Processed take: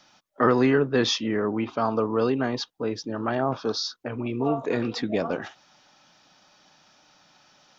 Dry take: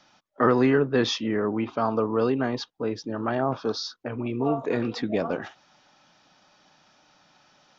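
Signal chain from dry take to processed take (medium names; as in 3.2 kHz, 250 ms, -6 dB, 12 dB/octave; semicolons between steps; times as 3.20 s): treble shelf 4 kHz +6 dB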